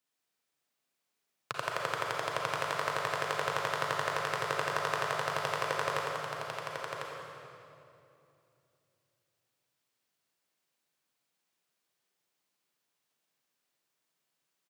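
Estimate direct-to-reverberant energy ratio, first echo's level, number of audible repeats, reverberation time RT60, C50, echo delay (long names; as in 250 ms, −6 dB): −3.5 dB, −5.5 dB, 1, 2.8 s, −2.5 dB, 1,049 ms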